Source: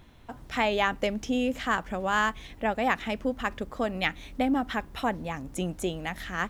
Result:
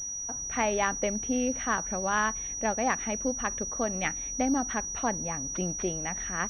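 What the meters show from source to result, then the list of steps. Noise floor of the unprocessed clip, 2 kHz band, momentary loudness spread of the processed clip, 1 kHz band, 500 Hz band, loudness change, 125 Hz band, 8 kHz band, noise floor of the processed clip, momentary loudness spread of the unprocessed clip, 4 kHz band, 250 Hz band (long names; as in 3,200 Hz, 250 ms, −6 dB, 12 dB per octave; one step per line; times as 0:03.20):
−49 dBFS, −3.0 dB, 4 LU, −1.5 dB, −1.5 dB, 0.0 dB, −1.5 dB, +19.5 dB, −36 dBFS, 8 LU, −8.0 dB, −1.5 dB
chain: switching amplifier with a slow clock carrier 5,800 Hz
level −1.5 dB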